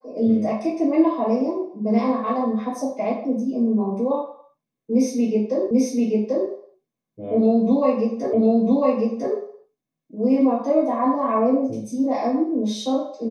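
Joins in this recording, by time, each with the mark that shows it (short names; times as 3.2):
5.71 repeat of the last 0.79 s
8.33 repeat of the last 1 s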